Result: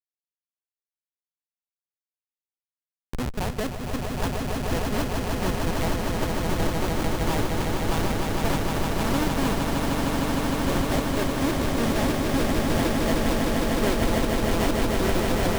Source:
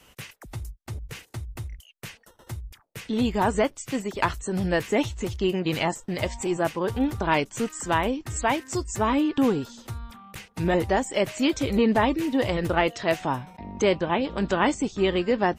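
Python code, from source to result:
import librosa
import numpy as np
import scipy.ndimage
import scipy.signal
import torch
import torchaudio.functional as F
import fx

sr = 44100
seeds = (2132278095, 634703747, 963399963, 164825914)

y = fx.env_lowpass(x, sr, base_hz=2400.0, full_db=-19.0)
y = fx.schmitt(y, sr, flips_db=-19.5)
y = fx.echo_swell(y, sr, ms=153, loudest=8, wet_db=-5.0)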